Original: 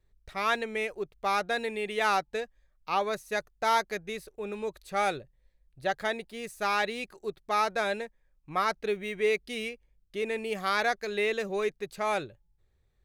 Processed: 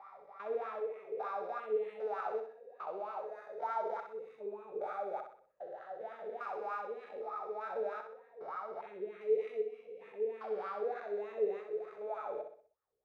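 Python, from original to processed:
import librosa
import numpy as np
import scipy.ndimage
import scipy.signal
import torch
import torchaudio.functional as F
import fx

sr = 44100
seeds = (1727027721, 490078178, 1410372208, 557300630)

y = fx.spec_steps(x, sr, hold_ms=400)
y = fx.dynamic_eq(y, sr, hz=1100.0, q=2.8, threshold_db=-52.0, ratio=4.0, max_db=-7)
y = fx.wah_lfo(y, sr, hz=3.3, low_hz=430.0, high_hz=1300.0, q=10.0)
y = fx.echo_feedback(y, sr, ms=63, feedback_pct=41, wet_db=-7.0)
y = y * 10.0 ** (8.0 / 20.0)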